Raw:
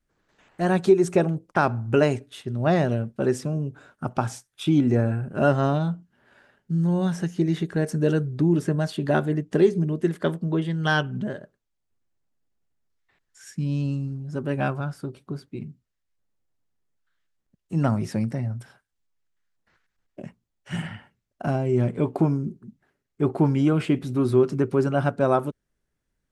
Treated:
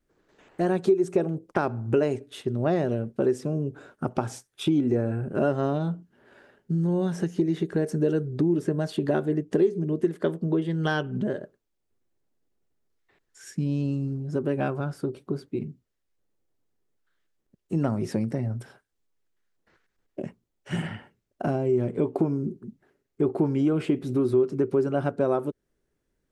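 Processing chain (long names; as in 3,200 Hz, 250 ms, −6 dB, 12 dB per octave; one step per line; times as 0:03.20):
parametric band 390 Hz +9 dB 1.2 octaves
downward compressor 2.5 to 1, threshold −24 dBFS, peak gain reduction 14 dB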